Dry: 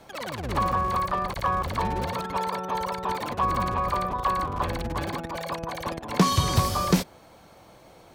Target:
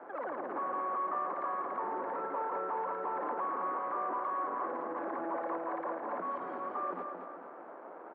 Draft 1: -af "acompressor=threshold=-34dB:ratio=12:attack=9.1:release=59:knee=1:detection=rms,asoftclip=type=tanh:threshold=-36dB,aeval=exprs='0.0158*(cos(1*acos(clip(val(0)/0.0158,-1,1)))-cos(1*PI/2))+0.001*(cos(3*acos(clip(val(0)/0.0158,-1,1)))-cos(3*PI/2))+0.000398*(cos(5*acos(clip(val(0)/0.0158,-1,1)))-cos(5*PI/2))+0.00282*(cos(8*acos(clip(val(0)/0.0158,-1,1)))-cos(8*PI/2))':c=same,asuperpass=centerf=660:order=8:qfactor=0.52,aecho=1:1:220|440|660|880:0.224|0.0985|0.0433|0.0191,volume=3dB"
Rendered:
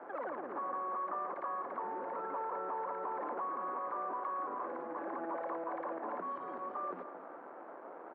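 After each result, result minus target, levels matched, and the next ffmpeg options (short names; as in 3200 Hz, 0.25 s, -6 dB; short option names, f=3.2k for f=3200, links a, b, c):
compressor: peak gain reduction +6.5 dB; echo-to-direct -7 dB
-af "acompressor=threshold=-27dB:ratio=12:attack=9.1:release=59:knee=1:detection=rms,asoftclip=type=tanh:threshold=-36dB,aeval=exprs='0.0158*(cos(1*acos(clip(val(0)/0.0158,-1,1)))-cos(1*PI/2))+0.001*(cos(3*acos(clip(val(0)/0.0158,-1,1)))-cos(3*PI/2))+0.000398*(cos(5*acos(clip(val(0)/0.0158,-1,1)))-cos(5*PI/2))+0.00282*(cos(8*acos(clip(val(0)/0.0158,-1,1)))-cos(8*PI/2))':c=same,asuperpass=centerf=660:order=8:qfactor=0.52,aecho=1:1:220|440|660|880:0.224|0.0985|0.0433|0.0191,volume=3dB"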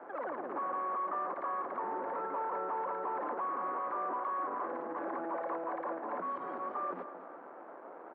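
echo-to-direct -7 dB
-af "acompressor=threshold=-27dB:ratio=12:attack=9.1:release=59:knee=1:detection=rms,asoftclip=type=tanh:threshold=-36dB,aeval=exprs='0.0158*(cos(1*acos(clip(val(0)/0.0158,-1,1)))-cos(1*PI/2))+0.001*(cos(3*acos(clip(val(0)/0.0158,-1,1)))-cos(3*PI/2))+0.000398*(cos(5*acos(clip(val(0)/0.0158,-1,1)))-cos(5*PI/2))+0.00282*(cos(8*acos(clip(val(0)/0.0158,-1,1)))-cos(8*PI/2))':c=same,asuperpass=centerf=660:order=8:qfactor=0.52,aecho=1:1:220|440|660|880|1100:0.501|0.221|0.097|0.0427|0.0188,volume=3dB"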